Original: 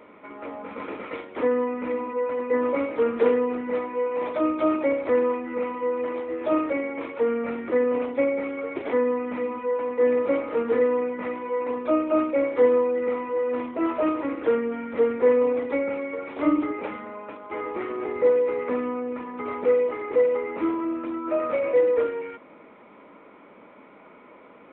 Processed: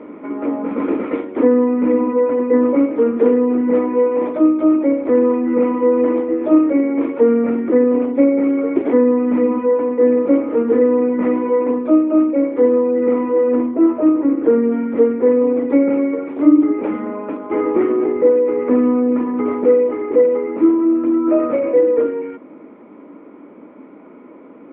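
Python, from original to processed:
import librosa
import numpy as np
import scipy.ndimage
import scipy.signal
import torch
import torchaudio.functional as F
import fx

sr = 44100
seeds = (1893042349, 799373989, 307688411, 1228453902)

y = fx.lowpass(x, sr, hz=2000.0, slope=6, at=(13.56, 14.64))
y = fx.peak_eq(y, sr, hz=290.0, db=14.5, octaves=1.2)
y = fx.rider(y, sr, range_db=5, speed_s=0.5)
y = scipy.signal.sosfilt(scipy.signal.bessel(2, 2000.0, 'lowpass', norm='mag', fs=sr, output='sos'), y)
y = y * 10.0 ** (1.5 / 20.0)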